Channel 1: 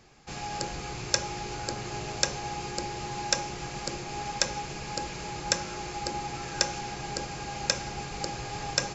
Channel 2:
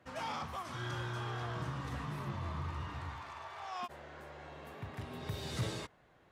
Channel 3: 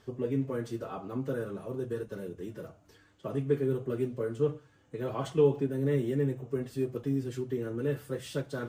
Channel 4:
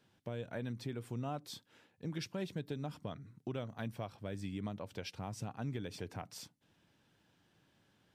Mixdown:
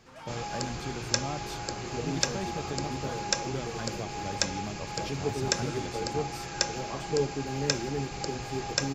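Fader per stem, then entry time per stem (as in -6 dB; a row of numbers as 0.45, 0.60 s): -1.5, -6.5, -4.5, +3.0 dB; 0.00, 0.00, 1.75, 0.00 s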